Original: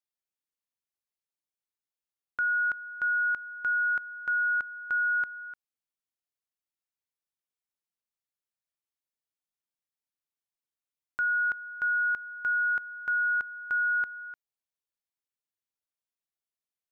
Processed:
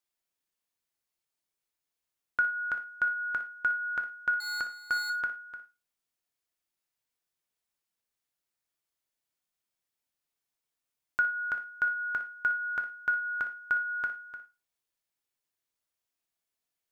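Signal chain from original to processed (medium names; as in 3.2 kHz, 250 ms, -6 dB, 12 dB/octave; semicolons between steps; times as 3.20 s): 4.40–5.10 s: median filter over 15 samples; on a send: flutter echo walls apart 10.2 m, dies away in 0.25 s; on the sum: gated-style reverb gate 130 ms falling, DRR 5.5 dB; trim +4.5 dB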